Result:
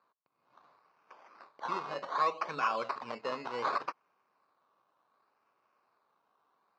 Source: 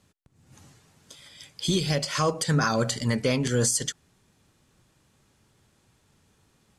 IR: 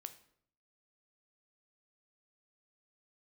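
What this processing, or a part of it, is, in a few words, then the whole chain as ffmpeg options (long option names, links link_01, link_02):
circuit-bent sampling toy: -af "acrusher=samples=15:mix=1:aa=0.000001:lfo=1:lforange=9:lforate=0.67,highpass=590,equalizer=frequency=1100:width_type=q:width=4:gain=10,equalizer=frequency=1900:width_type=q:width=4:gain=-8,equalizer=frequency=3300:width_type=q:width=4:gain=-10,lowpass=frequency=4300:width=0.5412,lowpass=frequency=4300:width=1.3066,volume=-6.5dB"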